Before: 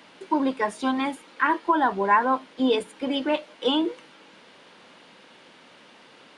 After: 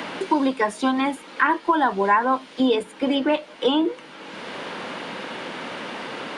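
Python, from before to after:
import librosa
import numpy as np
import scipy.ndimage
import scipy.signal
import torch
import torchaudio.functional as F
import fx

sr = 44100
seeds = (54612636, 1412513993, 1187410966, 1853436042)

y = fx.band_squash(x, sr, depth_pct=70)
y = F.gain(torch.from_numpy(y), 3.0).numpy()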